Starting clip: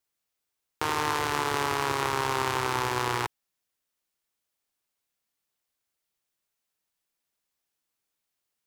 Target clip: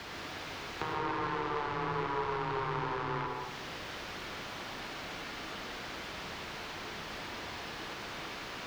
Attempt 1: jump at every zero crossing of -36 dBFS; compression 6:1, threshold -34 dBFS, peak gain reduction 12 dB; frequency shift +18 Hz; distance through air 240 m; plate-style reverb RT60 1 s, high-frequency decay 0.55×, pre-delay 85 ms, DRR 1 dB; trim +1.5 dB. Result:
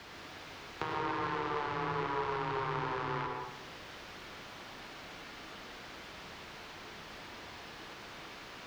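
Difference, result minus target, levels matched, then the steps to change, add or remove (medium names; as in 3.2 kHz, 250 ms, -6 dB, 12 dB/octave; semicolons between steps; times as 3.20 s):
jump at every zero crossing: distortion -6 dB
change: jump at every zero crossing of -29.5 dBFS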